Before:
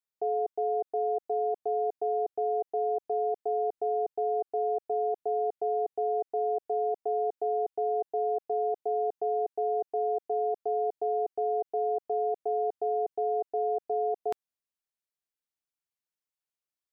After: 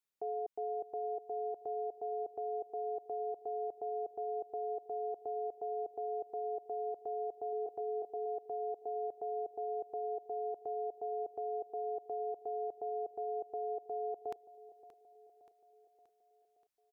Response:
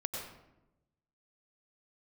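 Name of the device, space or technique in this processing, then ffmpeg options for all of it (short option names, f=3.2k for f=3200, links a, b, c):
stacked limiters: -filter_complex "[0:a]asettb=1/sr,asplit=3[a][b][c];[a]atrim=end=7.504[d];[b]atrim=start=7.5:end=8.26,asetpts=PTS-STARTPTS,afade=t=in:d=0.004:c=qsin,afade=t=out:st=0.756:d=0.004:c=qsin,asplit=2[e][f];[f]adelay=26,volume=-8.5dB[g];[e][g]amix=inputs=2:normalize=0,atrim=end_sample=33516[h];[c]atrim=start=8.256[i];[d][h]acrossfade=d=0.004:c1=hsin:c2=qsin[j];[j][i]acrossfade=d=0.004:c1=qsin:c2=hsin,alimiter=level_in=3dB:limit=-24dB:level=0:latency=1:release=228,volume=-3dB,alimiter=level_in=8.5dB:limit=-24dB:level=0:latency=1:release=39,volume=-8.5dB,aecho=1:1:577|1154|1731|2308|2885:0.141|0.0777|0.0427|0.0235|0.0129,volume=1dB"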